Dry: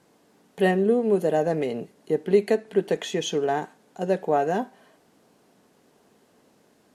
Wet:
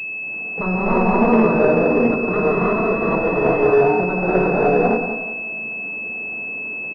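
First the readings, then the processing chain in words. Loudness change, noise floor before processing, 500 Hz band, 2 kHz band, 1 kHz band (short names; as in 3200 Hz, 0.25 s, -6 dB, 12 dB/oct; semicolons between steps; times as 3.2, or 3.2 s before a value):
+6.5 dB, -62 dBFS, +6.5 dB, +15.0 dB, +9.0 dB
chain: bin magnitudes rounded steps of 15 dB; treble ducked by the level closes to 440 Hz, closed at -19.5 dBFS; in parallel at -1 dB: compressor, threshold -33 dBFS, peak gain reduction 16.5 dB; on the sum: sine folder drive 12 dB, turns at -9.5 dBFS; flange 1 Hz, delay 8.9 ms, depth 1.2 ms, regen -67%; on a send: feedback echo 0.184 s, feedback 32%, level -8 dB; on the sum: non-linear reverb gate 0.38 s rising, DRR -7 dB; pulse-width modulation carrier 2600 Hz; gain -5.5 dB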